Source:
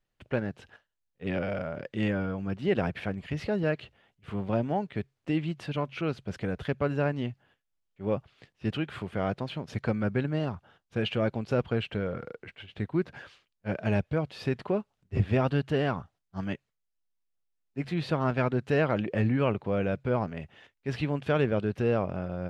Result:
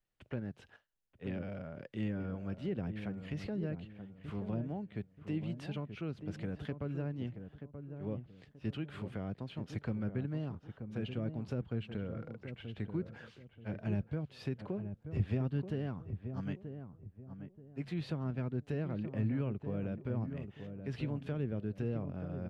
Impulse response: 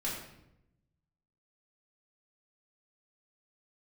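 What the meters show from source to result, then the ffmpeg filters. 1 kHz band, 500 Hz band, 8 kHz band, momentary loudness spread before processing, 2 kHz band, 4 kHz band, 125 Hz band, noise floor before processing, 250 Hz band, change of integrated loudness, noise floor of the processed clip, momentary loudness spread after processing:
−16.5 dB, −13.0 dB, can't be measured, 11 LU, −15.0 dB, −13.0 dB, −6.0 dB, −81 dBFS, −7.5 dB, −9.0 dB, −66 dBFS, 10 LU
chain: -filter_complex "[0:a]acrossover=split=330[link_01][link_02];[link_02]acompressor=threshold=-40dB:ratio=6[link_03];[link_01][link_03]amix=inputs=2:normalize=0,asplit=2[link_04][link_05];[link_05]adelay=931,lowpass=frequency=950:poles=1,volume=-8dB,asplit=2[link_06][link_07];[link_07]adelay=931,lowpass=frequency=950:poles=1,volume=0.32,asplit=2[link_08][link_09];[link_09]adelay=931,lowpass=frequency=950:poles=1,volume=0.32,asplit=2[link_10][link_11];[link_11]adelay=931,lowpass=frequency=950:poles=1,volume=0.32[link_12];[link_04][link_06][link_08][link_10][link_12]amix=inputs=5:normalize=0,volume=-6.5dB"

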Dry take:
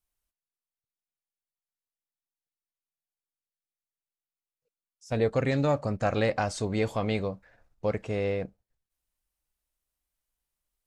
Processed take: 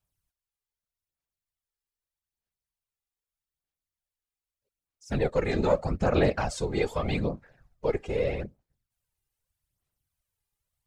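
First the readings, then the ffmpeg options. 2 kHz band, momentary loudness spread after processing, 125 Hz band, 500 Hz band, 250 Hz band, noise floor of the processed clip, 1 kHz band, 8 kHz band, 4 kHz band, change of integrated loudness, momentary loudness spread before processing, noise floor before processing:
0.0 dB, 9 LU, −0.5 dB, +1.0 dB, 0.0 dB, below −85 dBFS, −0.5 dB, 0.0 dB, 0.0 dB, +0.5 dB, 8 LU, below −85 dBFS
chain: -af "afftfilt=real='hypot(re,im)*cos(2*PI*random(0))':imag='hypot(re,im)*sin(2*PI*random(1))':win_size=512:overlap=0.75,aphaser=in_gain=1:out_gain=1:delay=2.5:decay=0.5:speed=0.81:type=sinusoidal,volume=5dB"

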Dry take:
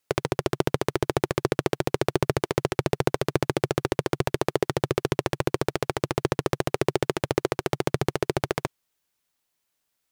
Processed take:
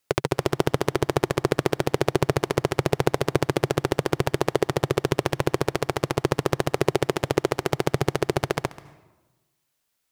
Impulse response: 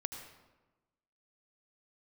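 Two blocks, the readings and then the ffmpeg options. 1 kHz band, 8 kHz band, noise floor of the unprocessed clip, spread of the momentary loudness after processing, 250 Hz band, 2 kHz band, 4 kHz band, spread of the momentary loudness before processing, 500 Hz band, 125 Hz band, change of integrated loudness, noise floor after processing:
+2.5 dB, +2.0 dB, −78 dBFS, 2 LU, +2.0 dB, +2.0 dB, +2.0 dB, 2 LU, +2.0 dB, +2.5 dB, +2.0 dB, −76 dBFS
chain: -filter_complex "[0:a]asplit=2[link_01][link_02];[link_02]equalizer=frequency=460:width_type=o:width=0.63:gain=-6[link_03];[1:a]atrim=start_sample=2205,adelay=134[link_04];[link_03][link_04]afir=irnorm=-1:irlink=0,volume=-15.5dB[link_05];[link_01][link_05]amix=inputs=2:normalize=0,volume=2dB"

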